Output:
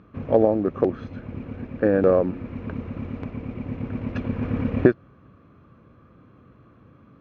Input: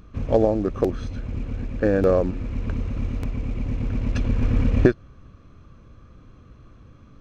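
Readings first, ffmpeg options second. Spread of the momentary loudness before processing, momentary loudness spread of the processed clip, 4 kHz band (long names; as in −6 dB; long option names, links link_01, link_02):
12 LU, 16 LU, can't be measured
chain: -af "highpass=130,lowpass=2200,volume=1dB"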